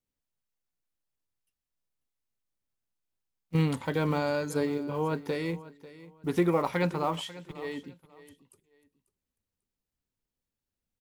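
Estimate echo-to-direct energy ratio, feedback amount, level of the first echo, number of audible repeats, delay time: -17.5 dB, 24%, -17.5 dB, 2, 0.543 s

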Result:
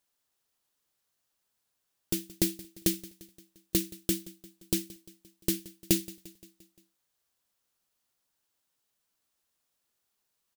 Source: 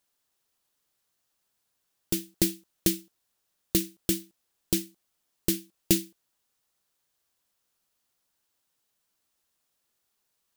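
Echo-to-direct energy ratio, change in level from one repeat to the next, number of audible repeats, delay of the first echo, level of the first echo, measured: -18.0 dB, -4.5 dB, 4, 0.174 s, -20.0 dB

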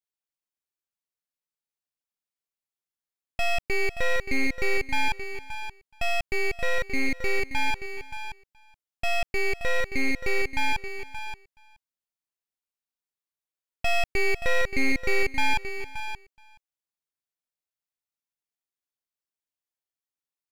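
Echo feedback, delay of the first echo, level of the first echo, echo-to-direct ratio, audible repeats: no steady repeat, 0.424 s, -21.0 dB, -9.5 dB, 3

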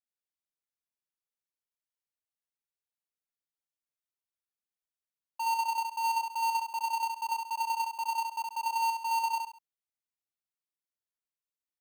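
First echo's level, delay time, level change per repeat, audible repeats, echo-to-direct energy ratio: -3.5 dB, 68 ms, -9.5 dB, 3, -3.0 dB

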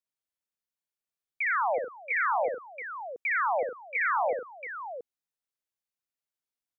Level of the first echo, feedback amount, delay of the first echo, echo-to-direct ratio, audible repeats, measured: -5.0 dB, no steady repeat, 61 ms, -3.0 dB, 4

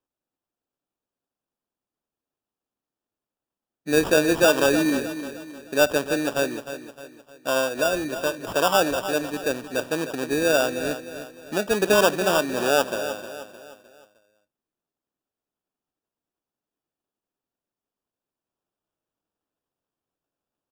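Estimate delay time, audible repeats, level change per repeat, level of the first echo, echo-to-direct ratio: 0.307 s, 4, -7.5 dB, -11.0 dB, -10.0 dB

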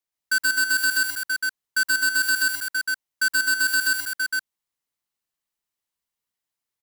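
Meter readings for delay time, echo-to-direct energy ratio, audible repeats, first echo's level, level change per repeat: 0.123 s, 0.0 dB, 3, -3.0 dB, no steady repeat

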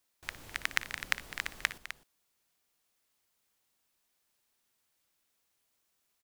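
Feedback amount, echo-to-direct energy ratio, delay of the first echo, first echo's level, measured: no steady repeat, -9.5 dB, 58 ms, -16.5 dB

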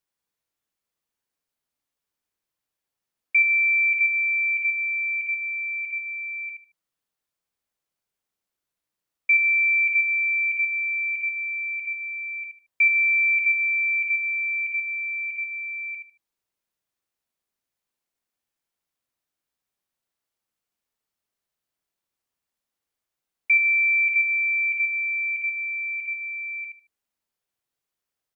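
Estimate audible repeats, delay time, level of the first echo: 3, 75 ms, -7.0 dB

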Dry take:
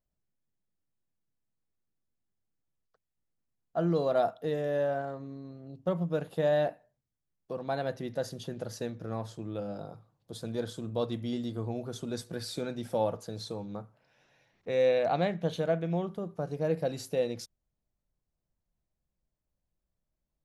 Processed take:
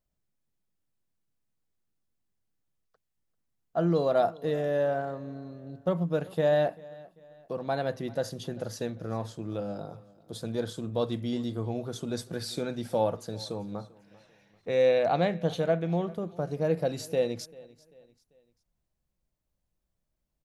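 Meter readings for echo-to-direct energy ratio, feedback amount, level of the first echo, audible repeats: -21.5 dB, 40%, -22.0 dB, 2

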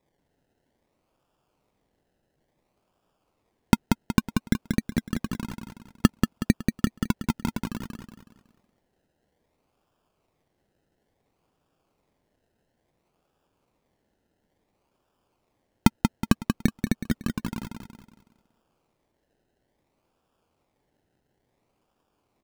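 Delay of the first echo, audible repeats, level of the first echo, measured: 0.185 s, 4, -5.0 dB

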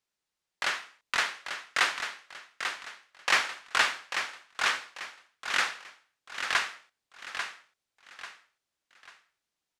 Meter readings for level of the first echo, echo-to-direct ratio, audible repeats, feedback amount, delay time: -7.5 dB, -7.0 dB, 4, 35%, 0.842 s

